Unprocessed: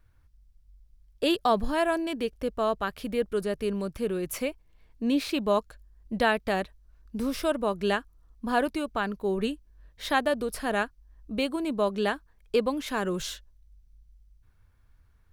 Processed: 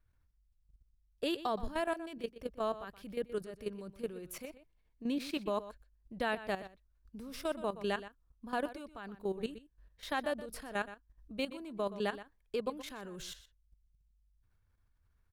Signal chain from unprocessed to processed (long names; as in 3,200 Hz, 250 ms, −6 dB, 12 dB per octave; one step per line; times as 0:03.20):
output level in coarse steps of 13 dB
slap from a distant wall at 21 metres, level −14 dB
level −6.5 dB